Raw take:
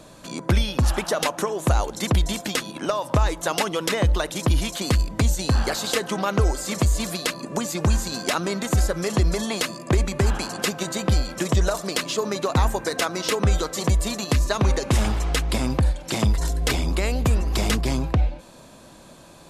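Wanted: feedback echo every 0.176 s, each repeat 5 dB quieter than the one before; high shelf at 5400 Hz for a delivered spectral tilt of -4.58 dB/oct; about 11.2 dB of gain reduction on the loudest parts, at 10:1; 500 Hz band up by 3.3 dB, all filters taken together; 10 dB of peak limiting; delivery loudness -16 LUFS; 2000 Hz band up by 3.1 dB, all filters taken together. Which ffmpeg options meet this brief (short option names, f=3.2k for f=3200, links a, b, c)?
-af "equalizer=f=500:t=o:g=4,equalizer=f=2k:t=o:g=4.5,highshelf=f=5.4k:g=-6,acompressor=threshold=-26dB:ratio=10,alimiter=limit=-20.5dB:level=0:latency=1,aecho=1:1:176|352|528|704|880|1056|1232:0.562|0.315|0.176|0.0988|0.0553|0.031|0.0173,volume=15dB"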